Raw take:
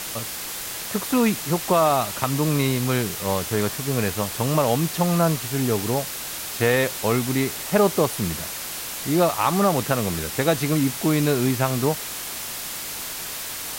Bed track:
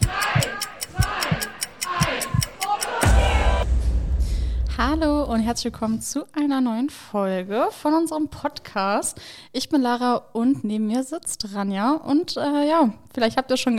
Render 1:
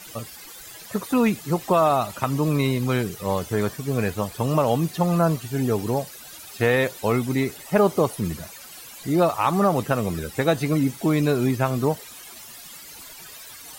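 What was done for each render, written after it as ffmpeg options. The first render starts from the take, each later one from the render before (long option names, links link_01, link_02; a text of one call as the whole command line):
ffmpeg -i in.wav -af "afftdn=noise_reduction=15:noise_floor=-32" out.wav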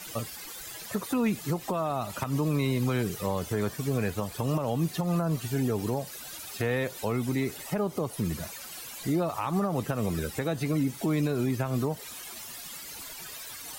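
ffmpeg -i in.wav -filter_complex "[0:a]acrossover=split=290[link_01][link_02];[link_02]acompressor=threshold=-23dB:ratio=3[link_03];[link_01][link_03]amix=inputs=2:normalize=0,alimiter=limit=-19dB:level=0:latency=1:release=191" out.wav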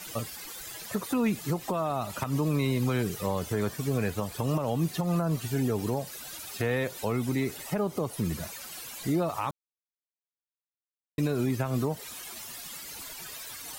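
ffmpeg -i in.wav -filter_complex "[0:a]asplit=3[link_01][link_02][link_03];[link_01]atrim=end=9.51,asetpts=PTS-STARTPTS,afade=type=out:start_time=9.506:duration=0.004:curve=hsin[link_04];[link_02]atrim=start=9.51:end=11.18,asetpts=PTS-STARTPTS,volume=0[link_05];[link_03]atrim=start=11.18,asetpts=PTS-STARTPTS,afade=type=in:duration=0.004:curve=hsin[link_06];[link_04][link_05][link_06]concat=n=3:v=0:a=1" out.wav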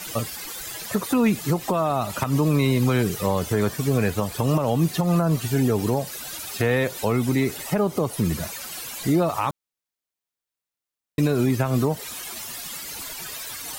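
ffmpeg -i in.wav -af "volume=7dB" out.wav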